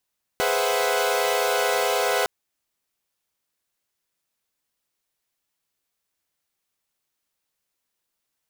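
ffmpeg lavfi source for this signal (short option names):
-f lavfi -i "aevalsrc='0.0596*((2*mod(415.3*t,1)-1)+(2*mod(493.88*t,1)-1)+(2*mod(523.25*t,1)-1)+(2*mod(659.26*t,1)-1)+(2*mod(739.99*t,1)-1))':d=1.86:s=44100"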